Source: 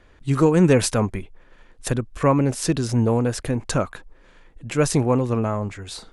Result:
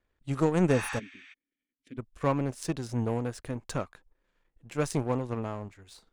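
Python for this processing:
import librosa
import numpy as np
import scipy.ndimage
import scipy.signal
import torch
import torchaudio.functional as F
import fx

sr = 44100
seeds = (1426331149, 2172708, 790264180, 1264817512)

y = fx.power_curve(x, sr, exponent=1.4)
y = fx.spec_repair(y, sr, seeds[0], start_s=0.75, length_s=0.56, low_hz=730.0, high_hz=8700.0, source='before')
y = fx.vowel_filter(y, sr, vowel='i', at=(0.98, 1.97), fade=0.02)
y = y * librosa.db_to_amplitude(-6.5)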